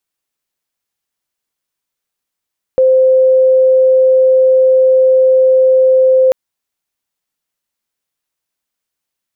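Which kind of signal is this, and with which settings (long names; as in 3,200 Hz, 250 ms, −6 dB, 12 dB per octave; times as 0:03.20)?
tone sine 520 Hz −5.5 dBFS 3.54 s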